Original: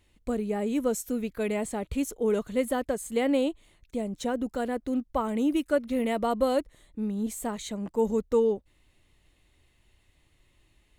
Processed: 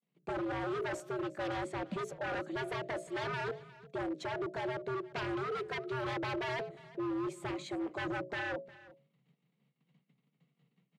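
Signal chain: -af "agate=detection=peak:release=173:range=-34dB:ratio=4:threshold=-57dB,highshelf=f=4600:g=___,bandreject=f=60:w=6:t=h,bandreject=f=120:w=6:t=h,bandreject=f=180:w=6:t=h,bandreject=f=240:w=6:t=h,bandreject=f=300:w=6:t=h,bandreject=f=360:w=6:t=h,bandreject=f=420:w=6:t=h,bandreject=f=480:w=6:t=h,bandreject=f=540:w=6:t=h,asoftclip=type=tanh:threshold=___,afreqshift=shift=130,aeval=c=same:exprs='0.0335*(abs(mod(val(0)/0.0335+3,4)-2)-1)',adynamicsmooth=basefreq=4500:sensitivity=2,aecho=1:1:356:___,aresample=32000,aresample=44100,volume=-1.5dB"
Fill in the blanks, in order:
-4, -21.5dB, 0.106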